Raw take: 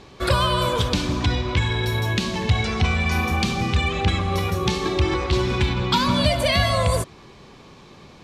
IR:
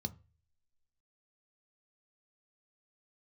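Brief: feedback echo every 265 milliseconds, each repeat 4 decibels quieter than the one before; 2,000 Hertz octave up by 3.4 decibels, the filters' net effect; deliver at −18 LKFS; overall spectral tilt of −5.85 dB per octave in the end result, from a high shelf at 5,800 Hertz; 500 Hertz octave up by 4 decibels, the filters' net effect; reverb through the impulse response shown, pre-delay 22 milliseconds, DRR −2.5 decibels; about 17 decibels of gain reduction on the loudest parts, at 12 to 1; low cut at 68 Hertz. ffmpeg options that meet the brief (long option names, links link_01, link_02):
-filter_complex "[0:a]highpass=68,equalizer=frequency=500:width_type=o:gain=5,equalizer=frequency=2000:width_type=o:gain=5,highshelf=frequency=5800:gain=-8,acompressor=threshold=-31dB:ratio=12,aecho=1:1:265|530|795|1060|1325|1590|1855|2120|2385:0.631|0.398|0.25|0.158|0.0994|0.0626|0.0394|0.0249|0.0157,asplit=2[link_01][link_02];[1:a]atrim=start_sample=2205,adelay=22[link_03];[link_02][link_03]afir=irnorm=-1:irlink=0,volume=4dB[link_04];[link_01][link_04]amix=inputs=2:normalize=0,volume=5.5dB"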